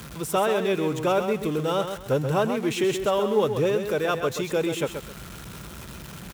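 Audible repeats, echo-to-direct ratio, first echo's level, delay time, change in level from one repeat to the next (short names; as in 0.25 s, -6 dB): 2, -7.5 dB, -8.0 dB, 0.131 s, -11.5 dB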